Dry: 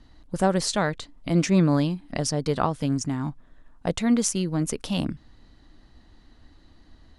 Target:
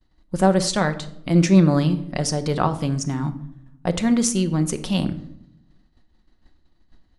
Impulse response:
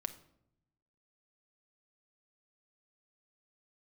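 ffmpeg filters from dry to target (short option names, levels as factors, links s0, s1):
-filter_complex "[0:a]agate=range=0.0224:threshold=0.00891:ratio=3:detection=peak[s0];[1:a]atrim=start_sample=2205[s1];[s0][s1]afir=irnorm=-1:irlink=0,volume=1.58"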